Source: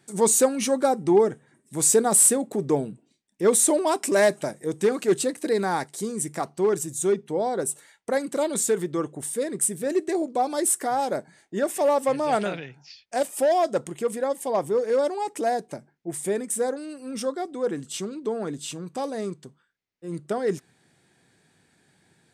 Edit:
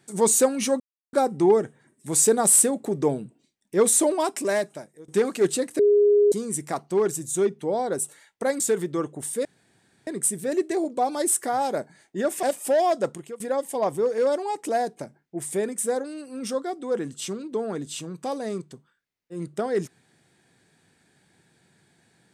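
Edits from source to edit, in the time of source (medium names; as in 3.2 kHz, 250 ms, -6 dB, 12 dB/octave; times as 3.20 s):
0.80 s: insert silence 0.33 s
3.74–4.75 s: fade out, to -23 dB
5.46–5.99 s: bleep 412 Hz -14 dBFS
8.27–8.60 s: delete
9.45 s: insert room tone 0.62 s
11.81–13.15 s: delete
13.80–14.12 s: fade out, to -21.5 dB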